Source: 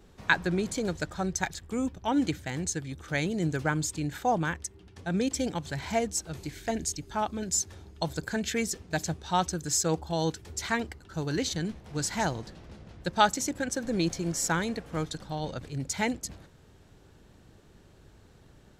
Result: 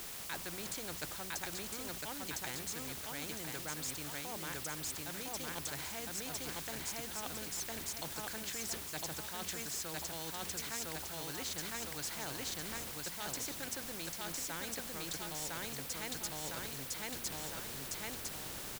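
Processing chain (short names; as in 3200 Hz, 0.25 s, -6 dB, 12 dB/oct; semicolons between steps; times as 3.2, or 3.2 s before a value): feedback echo 1.007 s, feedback 24%, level -3 dB; reverse; compressor 16:1, threshold -41 dBFS, peak gain reduction 26 dB; reverse; low shelf 230 Hz -3 dB; notches 60/120/180/240 Hz; requantised 10-bit, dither triangular; spectral compressor 2:1; gain +5 dB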